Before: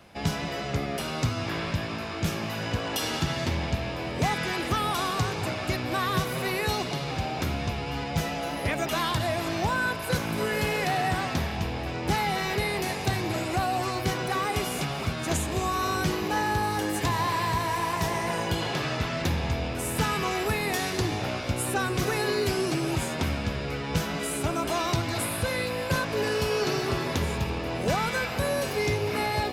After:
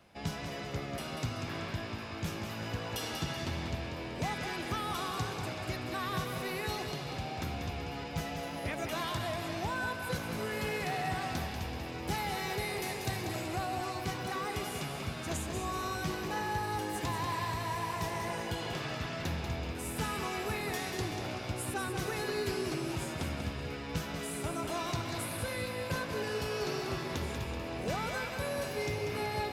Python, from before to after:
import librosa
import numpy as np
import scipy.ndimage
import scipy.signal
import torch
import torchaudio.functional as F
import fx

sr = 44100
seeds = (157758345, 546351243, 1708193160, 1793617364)

y = fx.high_shelf(x, sr, hz=7400.0, db=6.5, at=(11.21, 13.46))
y = fx.echo_feedback(y, sr, ms=190, feedback_pct=43, wet_db=-7.0)
y = y * 10.0 ** (-9.0 / 20.0)